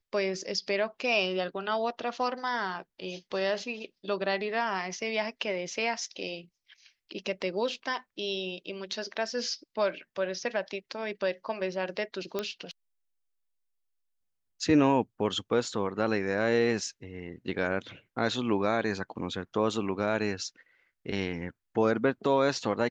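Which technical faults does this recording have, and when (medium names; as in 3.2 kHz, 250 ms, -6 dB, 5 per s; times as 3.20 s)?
12.39 s: pop -16 dBFS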